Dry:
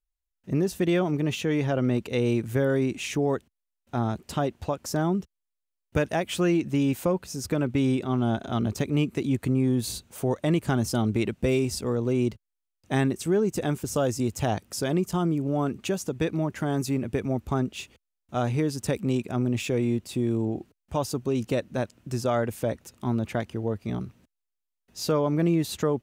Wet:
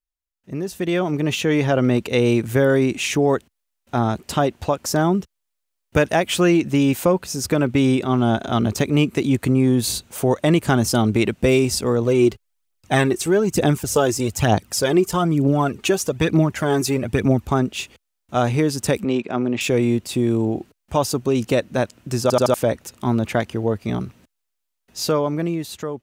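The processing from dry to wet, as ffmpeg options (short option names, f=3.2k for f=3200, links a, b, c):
-filter_complex "[0:a]asplit=3[a][b][c];[a]afade=t=out:st=12.02:d=0.02[d];[b]aphaser=in_gain=1:out_gain=1:delay=3:decay=0.5:speed=1.1:type=triangular,afade=t=in:st=12.02:d=0.02,afade=t=out:st=17.46:d=0.02[e];[c]afade=t=in:st=17.46:d=0.02[f];[d][e][f]amix=inputs=3:normalize=0,asettb=1/sr,asplit=3[g][h][i];[g]atrim=end=19.044[j];[h]atrim=start=19.04:end=19.61,asetpts=PTS-STARTPTS,afade=t=in:d=0.004:c=qsin,afade=t=out:st=0.566:d=0.004:c=qsin,highpass=210,lowpass=3.6k[k];[i]atrim=start=19.606[l];[j][k]acrossfade=d=0.004:c1=hsin:c2=qsin[m];[m][l]acrossfade=d=0.004:c1=qsin:c2=hsin,asplit=5[n][o][p][q][r];[n]atrim=end=22.302[s];[o]atrim=start=22.218:end=22.302[t];[p]atrim=start=22.218:end=22.302[u];[q]atrim=start=22.218:end=22.302[v];[r]atrim=start=22.538[w];[s][t]acrossfade=d=0.004:c1=hsin:c2=hsin[x];[x][u]acrossfade=d=0.004:c1=hsin:c2=hsin[y];[y][v]acrossfade=d=0.004:c1=hsin:c2=hsin[z];[z][w]acrossfade=d=0.004:c1=hsin:c2=hsin,lowshelf=f=360:g=-4.5,dynaudnorm=f=160:g=13:m=12dB,volume=-1.5dB"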